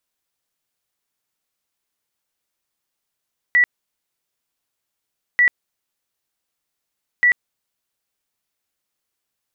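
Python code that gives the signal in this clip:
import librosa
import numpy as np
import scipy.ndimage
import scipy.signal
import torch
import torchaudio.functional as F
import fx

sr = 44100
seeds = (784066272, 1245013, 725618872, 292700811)

y = fx.tone_burst(sr, hz=1950.0, cycles=174, every_s=1.84, bursts=3, level_db=-10.5)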